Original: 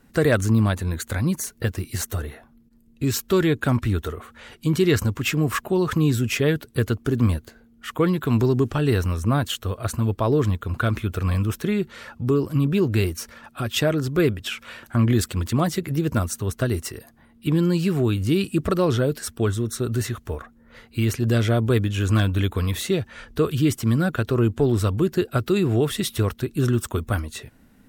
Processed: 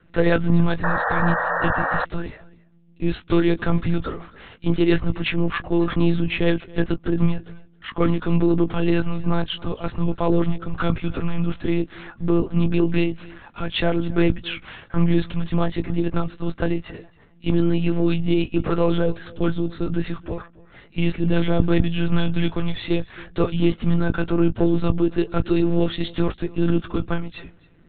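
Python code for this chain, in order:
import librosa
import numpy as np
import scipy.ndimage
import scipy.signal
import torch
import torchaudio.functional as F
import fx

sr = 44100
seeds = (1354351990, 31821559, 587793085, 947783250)

p1 = fx.cheby_harmonics(x, sr, harmonics=(6,), levels_db=(-31,), full_scale_db=-7.5)
p2 = fx.lpc_monotone(p1, sr, seeds[0], pitch_hz=170.0, order=10)
p3 = fx.doubler(p2, sr, ms=18.0, db=-10.5)
p4 = p3 + fx.echo_single(p3, sr, ms=272, db=-22.0, dry=0)
y = fx.spec_paint(p4, sr, seeds[1], shape='noise', start_s=0.83, length_s=1.22, low_hz=460.0, high_hz=1900.0, level_db=-23.0)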